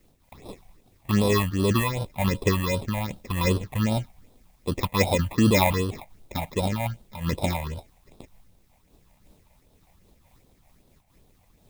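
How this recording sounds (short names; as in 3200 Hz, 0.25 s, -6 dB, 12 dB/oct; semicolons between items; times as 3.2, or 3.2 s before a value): aliases and images of a low sample rate 1500 Hz, jitter 0%; phasing stages 6, 2.6 Hz, lowest notch 350–2000 Hz; a quantiser's noise floor 12-bit, dither triangular; noise-modulated level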